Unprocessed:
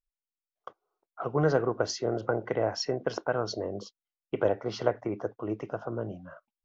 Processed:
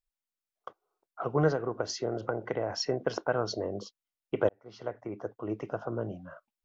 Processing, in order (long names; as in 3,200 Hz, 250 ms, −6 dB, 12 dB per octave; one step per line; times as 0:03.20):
0:01.48–0:02.70: downward compressor 5 to 1, threshold −27 dBFS, peak gain reduction 8 dB
0:04.49–0:05.70: fade in linear